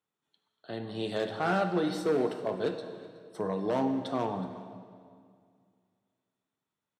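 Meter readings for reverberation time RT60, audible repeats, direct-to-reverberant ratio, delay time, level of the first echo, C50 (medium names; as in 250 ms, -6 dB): 2.1 s, 1, 7.0 dB, 372 ms, -20.5 dB, 7.5 dB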